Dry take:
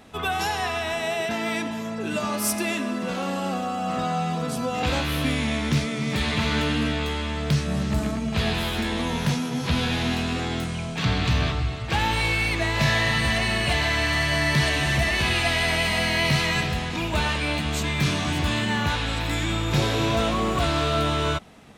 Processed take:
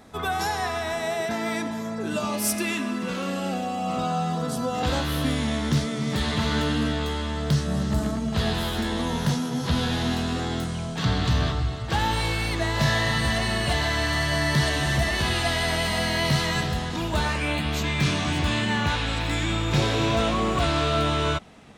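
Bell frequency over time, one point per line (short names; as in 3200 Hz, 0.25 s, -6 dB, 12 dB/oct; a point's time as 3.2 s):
bell -10.5 dB 0.38 oct
2.05 s 2800 Hz
2.82 s 510 Hz
4.28 s 2400 Hz
17.19 s 2400 Hz
17.99 s 13000 Hz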